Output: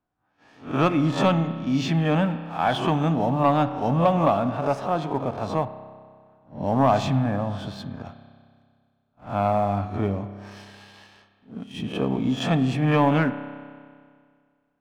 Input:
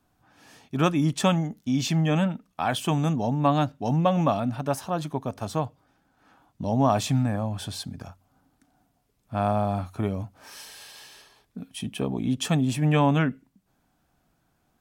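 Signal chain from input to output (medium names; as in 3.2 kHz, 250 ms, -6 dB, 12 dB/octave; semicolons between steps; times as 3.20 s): reverse spectral sustain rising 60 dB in 0.38 s; tape spacing loss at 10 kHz 27 dB; gate -57 dBFS, range -10 dB; bass shelf 330 Hz -7.5 dB; waveshaping leveller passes 1; reverberation RT60 2.0 s, pre-delay 30 ms, DRR 10.5 dB; 5.65–8.05 s: tape noise reduction on one side only decoder only; trim +3 dB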